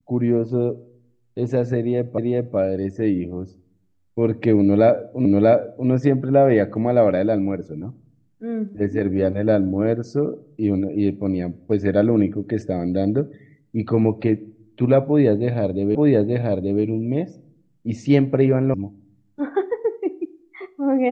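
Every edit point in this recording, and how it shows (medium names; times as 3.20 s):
2.18 s: repeat of the last 0.39 s
5.25 s: repeat of the last 0.64 s
15.95 s: repeat of the last 0.88 s
18.74 s: sound stops dead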